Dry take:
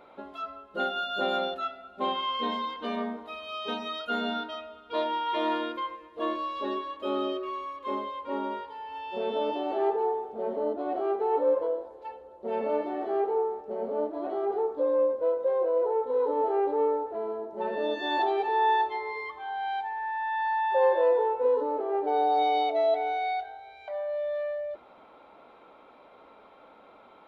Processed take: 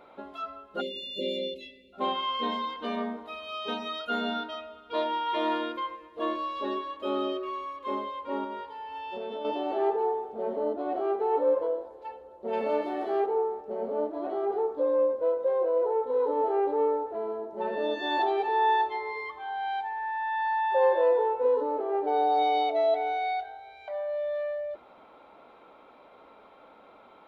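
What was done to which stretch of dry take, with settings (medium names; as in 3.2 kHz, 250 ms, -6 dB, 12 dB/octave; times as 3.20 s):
0.81–1.93 s: spectral selection erased 600–2000 Hz
8.44–9.45 s: compression, threshold -32 dBFS
12.53–13.26 s: treble shelf 2.8 kHz +11 dB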